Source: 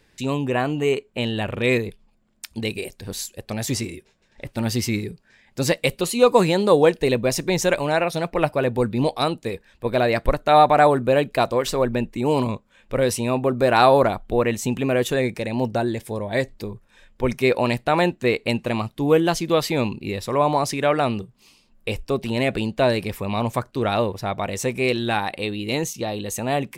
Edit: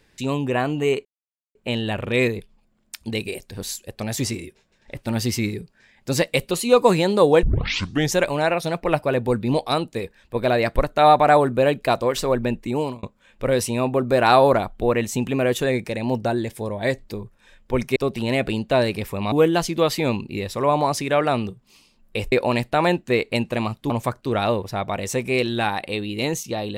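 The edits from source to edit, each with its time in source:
1.05 s: insert silence 0.50 s
6.93 s: tape start 0.70 s
12.19–12.53 s: fade out linear
17.46–19.04 s: swap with 22.04–23.40 s

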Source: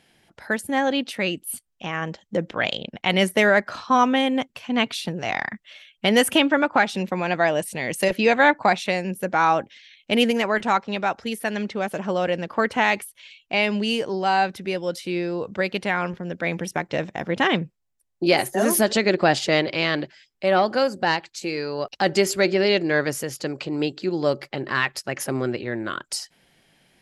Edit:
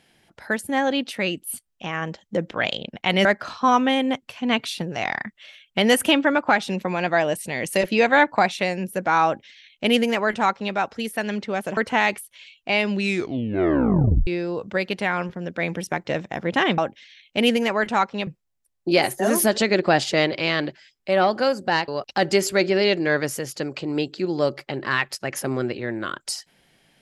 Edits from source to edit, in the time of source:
3.25–3.52 s: delete
9.52–11.01 s: copy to 17.62 s
12.04–12.61 s: delete
13.74 s: tape stop 1.37 s
21.23–21.72 s: delete

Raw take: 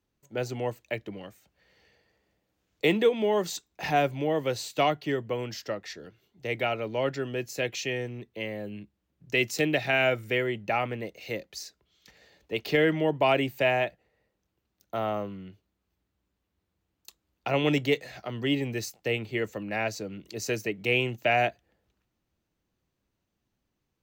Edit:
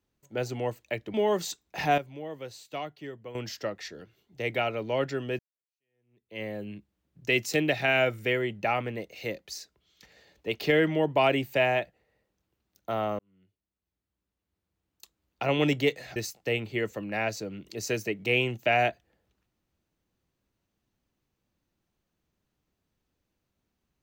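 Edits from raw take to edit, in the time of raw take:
1.14–3.19 s: delete
4.03–5.40 s: gain -11.5 dB
7.44–8.47 s: fade in exponential
15.24–17.63 s: fade in
18.21–18.75 s: delete

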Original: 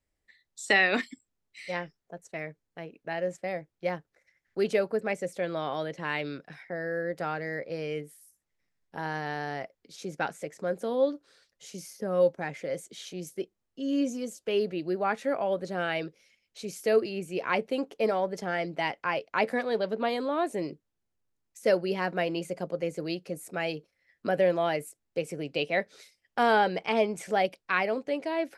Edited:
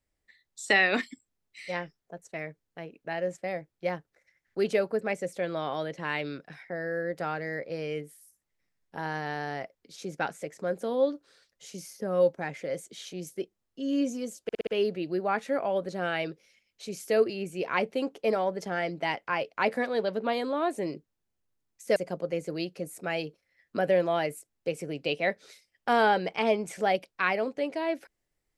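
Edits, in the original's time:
14.43 s: stutter 0.06 s, 5 plays
21.72–22.46 s: delete

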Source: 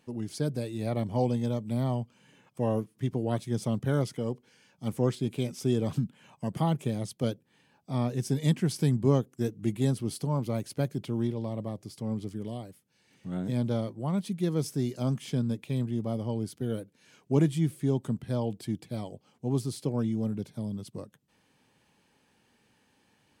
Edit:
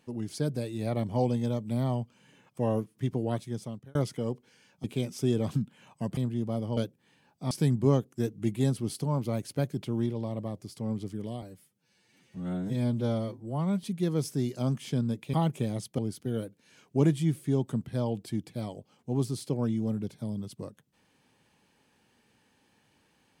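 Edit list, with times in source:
3.22–3.95 s: fade out
4.84–5.26 s: delete
6.59–7.24 s: swap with 15.74–16.34 s
7.98–8.72 s: delete
12.63–14.24 s: stretch 1.5×

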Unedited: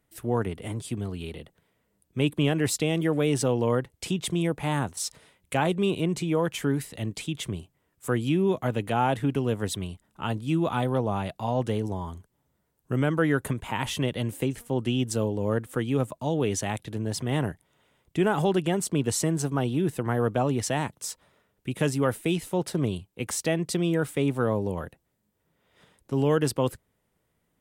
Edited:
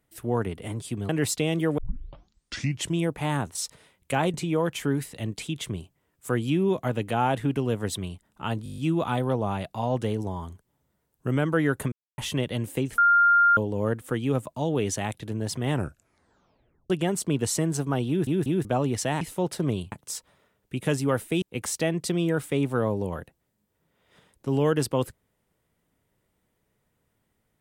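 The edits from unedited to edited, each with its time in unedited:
1.09–2.51 s: delete
3.20 s: tape start 1.19 s
5.76–6.13 s: delete
10.43 s: stutter 0.02 s, 8 plays
13.57–13.83 s: mute
14.63–15.22 s: bleep 1.4 kHz -15 dBFS
17.35 s: tape stop 1.20 s
19.73 s: stutter in place 0.19 s, 3 plays
22.36–23.07 s: move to 20.86 s

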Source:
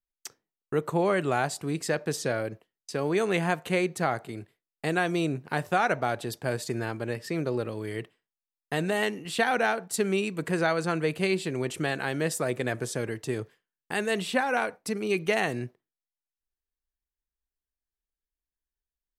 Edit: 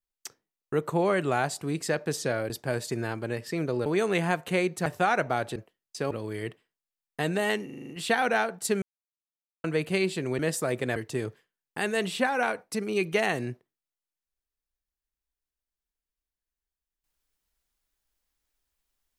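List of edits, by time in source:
2.50–3.05 s: swap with 6.28–7.64 s
4.05–5.58 s: delete
9.18 s: stutter 0.04 s, 7 plays
10.11–10.93 s: mute
11.68–12.17 s: delete
12.74–13.10 s: delete

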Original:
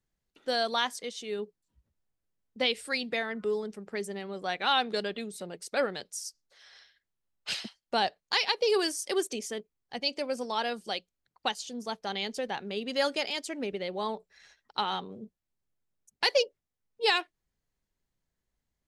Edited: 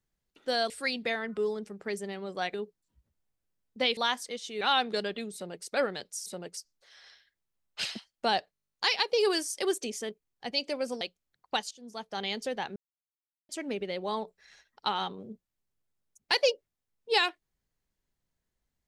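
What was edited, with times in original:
0.70–1.34 s: swap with 2.77–4.61 s
5.34–5.65 s: copy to 6.26 s
8.22 s: stutter 0.02 s, 11 plays
10.50–10.93 s: delete
11.63–12.16 s: fade in, from -17.5 dB
12.68–13.41 s: mute

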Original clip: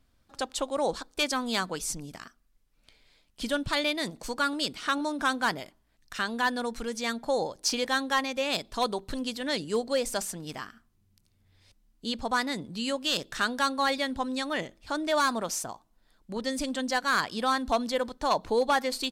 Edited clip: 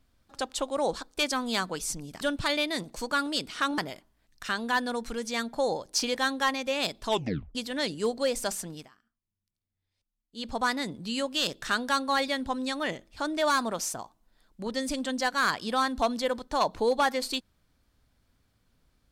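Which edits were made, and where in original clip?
2.21–3.48 s: delete
5.05–5.48 s: delete
8.77 s: tape stop 0.48 s
10.41–12.20 s: dip -21 dB, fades 0.18 s

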